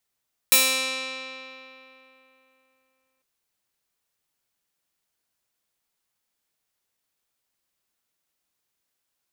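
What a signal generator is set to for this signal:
Karplus-Strong string C4, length 2.70 s, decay 3.24 s, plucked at 0.17, bright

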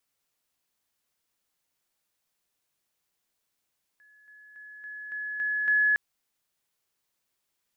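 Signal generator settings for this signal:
level staircase 1,700 Hz −55.5 dBFS, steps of 6 dB, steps 7, 0.28 s 0.00 s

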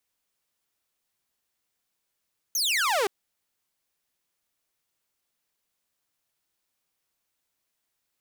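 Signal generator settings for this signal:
single falling chirp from 6,600 Hz, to 370 Hz, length 0.52 s saw, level −19.5 dB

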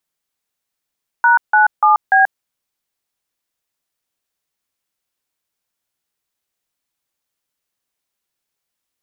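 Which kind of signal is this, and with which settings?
touch tones "#97B", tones 134 ms, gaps 159 ms, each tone −10.5 dBFS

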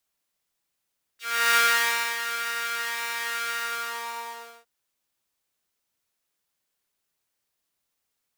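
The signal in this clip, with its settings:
subtractive patch with pulse-width modulation A#4, oscillator 2 saw, sub −1.5 dB, noise −9 dB, filter highpass, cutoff 760 Hz, Q 2.2, filter envelope 2.5 octaves, filter decay 0.06 s, filter sustain 40%, attack 356 ms, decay 0.62 s, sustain −10.5 dB, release 1.11 s, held 2.35 s, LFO 0.93 Hz, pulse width 43%, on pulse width 14%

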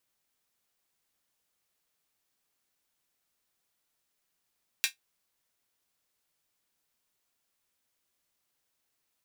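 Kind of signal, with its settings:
closed synth hi-hat, high-pass 2,200 Hz, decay 0.13 s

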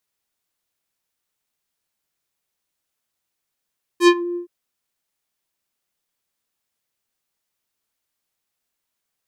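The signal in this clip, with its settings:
subtractive voice square F4 12 dB per octave, low-pass 350 Hz, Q 1.1, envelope 5.5 octaves, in 0.24 s, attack 78 ms, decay 0.06 s, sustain −16.5 dB, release 0.11 s, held 0.36 s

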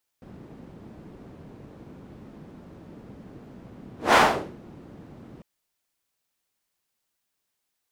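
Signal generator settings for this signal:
pass-by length 5.20 s, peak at 0:03.93, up 0.19 s, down 0.45 s, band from 220 Hz, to 1,100 Hz, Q 1.1, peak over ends 29.5 dB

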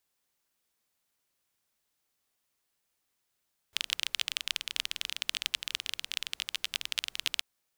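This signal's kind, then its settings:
rain-like ticks over hiss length 3.68 s, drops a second 21, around 3,100 Hz, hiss −27 dB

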